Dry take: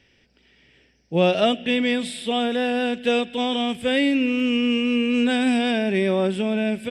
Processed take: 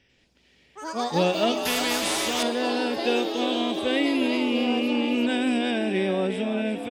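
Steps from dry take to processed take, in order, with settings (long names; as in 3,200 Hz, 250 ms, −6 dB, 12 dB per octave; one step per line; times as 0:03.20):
echo with shifted repeats 351 ms, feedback 43%, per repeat +64 Hz, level −8.5 dB
delay with pitch and tempo change per echo 95 ms, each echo +5 semitones, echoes 3, each echo −6 dB
0:01.65–0:02.43: every bin compressed towards the loudest bin 2 to 1
level −4.5 dB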